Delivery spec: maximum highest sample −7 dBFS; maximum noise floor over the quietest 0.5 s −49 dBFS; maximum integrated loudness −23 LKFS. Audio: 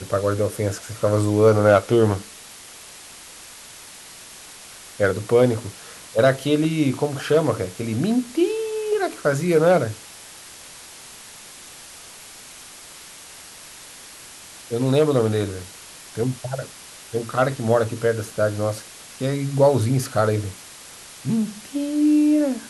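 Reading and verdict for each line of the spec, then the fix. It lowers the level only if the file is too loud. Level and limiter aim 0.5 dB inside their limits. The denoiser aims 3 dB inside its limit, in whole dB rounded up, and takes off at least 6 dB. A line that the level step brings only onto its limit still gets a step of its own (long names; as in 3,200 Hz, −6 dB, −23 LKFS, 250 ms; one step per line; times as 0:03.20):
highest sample −3.0 dBFS: out of spec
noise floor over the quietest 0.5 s −42 dBFS: out of spec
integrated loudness −21.0 LKFS: out of spec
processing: broadband denoise 8 dB, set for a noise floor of −42 dBFS
level −2.5 dB
brickwall limiter −7.5 dBFS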